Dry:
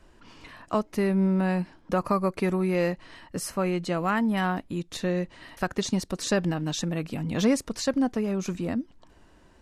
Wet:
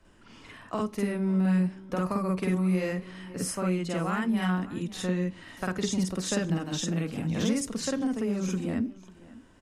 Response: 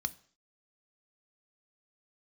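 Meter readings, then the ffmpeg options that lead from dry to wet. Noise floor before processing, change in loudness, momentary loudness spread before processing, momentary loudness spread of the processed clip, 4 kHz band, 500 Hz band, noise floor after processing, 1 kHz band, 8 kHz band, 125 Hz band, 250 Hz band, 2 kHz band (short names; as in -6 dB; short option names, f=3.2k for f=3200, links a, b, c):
-57 dBFS, -2.0 dB, 8 LU, 8 LU, -2.0 dB, -4.5 dB, -53 dBFS, -5.0 dB, +0.5 dB, 0.0 dB, -1.0 dB, -3.0 dB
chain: -filter_complex "[0:a]aecho=1:1:548:0.0841,asplit=2[a][b];[1:a]atrim=start_sample=2205,asetrate=66150,aresample=44100,adelay=49[c];[b][c]afir=irnorm=-1:irlink=0,volume=5dB[d];[a][d]amix=inputs=2:normalize=0,acrossover=split=160|3000[e][f][g];[f]acompressor=threshold=-21dB:ratio=6[h];[e][h][g]amix=inputs=3:normalize=0,volume=-5.5dB"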